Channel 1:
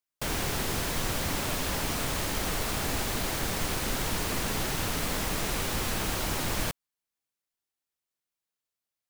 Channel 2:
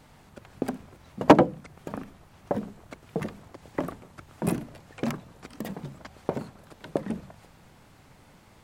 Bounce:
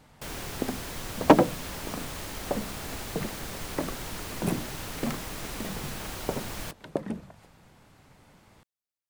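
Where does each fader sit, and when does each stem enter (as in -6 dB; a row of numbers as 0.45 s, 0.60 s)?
-7.0 dB, -2.0 dB; 0.00 s, 0.00 s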